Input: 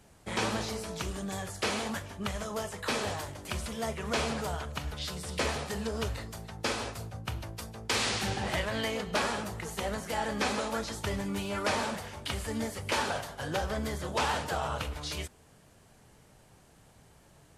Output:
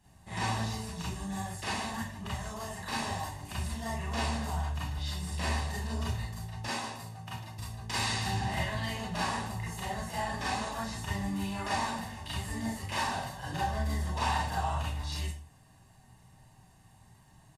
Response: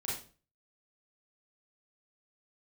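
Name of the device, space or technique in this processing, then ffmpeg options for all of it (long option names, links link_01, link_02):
microphone above a desk: -filter_complex "[0:a]aecho=1:1:1.1:0.7[link_01];[1:a]atrim=start_sample=2205[link_02];[link_01][link_02]afir=irnorm=-1:irlink=0,asettb=1/sr,asplit=3[link_03][link_04][link_05];[link_03]atrim=end=6.684[link_06];[link_04]atrim=start=6.68:end=7.59,asetpts=PTS-STARTPTS,afade=type=in:duration=0.004:curve=qsin,afade=type=out:start_time=0.906:duration=0.004:curve=qsin,highpass=180[link_07];[link_05]atrim=start=7.586[link_08];[link_06][link_07]acrossfade=duration=0.004:curve1=hsin:curve2=qsin[link_09];[link_09][link_08]acrossfade=duration=0.004:curve1=qsin:curve2=hsin,volume=-6dB"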